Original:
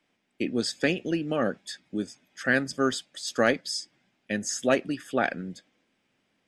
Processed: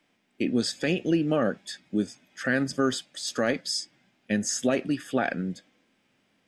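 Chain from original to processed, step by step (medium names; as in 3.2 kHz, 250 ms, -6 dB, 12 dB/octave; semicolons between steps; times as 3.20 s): harmonic-percussive split harmonic +6 dB; peak limiter -14 dBFS, peak gain reduction 8.5 dB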